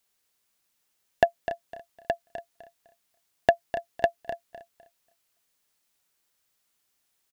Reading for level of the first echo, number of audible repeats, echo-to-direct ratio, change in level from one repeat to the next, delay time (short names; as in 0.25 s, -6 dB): -11.5 dB, 6, -10.0 dB, no steady repeat, 0.253 s